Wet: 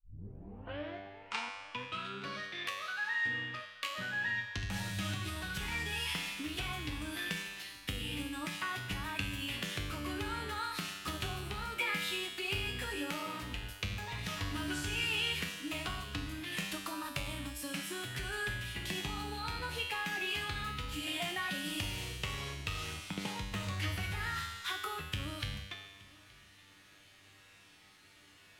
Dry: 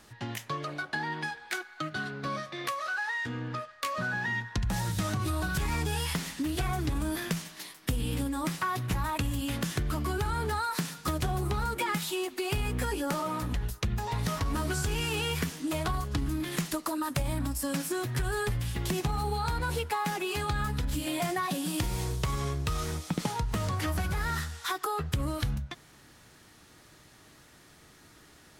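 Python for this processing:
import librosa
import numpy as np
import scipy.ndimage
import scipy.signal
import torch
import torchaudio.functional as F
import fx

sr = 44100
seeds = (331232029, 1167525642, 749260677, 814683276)

y = fx.tape_start_head(x, sr, length_s=2.25)
y = fx.peak_eq(y, sr, hz=2700.0, db=12.0, octaves=1.2)
y = fx.comb_fb(y, sr, f0_hz=98.0, decay_s=1.3, harmonics='all', damping=0.0, mix_pct=90)
y = y + 10.0 ** (-23.5 / 20.0) * np.pad(y, (int(872 * sr / 1000.0), 0))[:len(y)]
y = y * librosa.db_to_amplitude(5.5)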